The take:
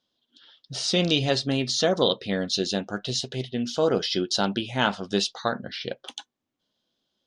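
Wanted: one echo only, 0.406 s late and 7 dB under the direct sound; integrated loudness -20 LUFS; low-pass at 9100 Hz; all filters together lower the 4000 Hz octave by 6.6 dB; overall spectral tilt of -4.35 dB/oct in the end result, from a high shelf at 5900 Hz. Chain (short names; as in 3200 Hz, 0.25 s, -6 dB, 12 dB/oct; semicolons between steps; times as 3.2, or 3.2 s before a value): LPF 9100 Hz; bell 4000 Hz -6 dB; high shelf 5900 Hz -6 dB; echo 0.406 s -7 dB; gain +6.5 dB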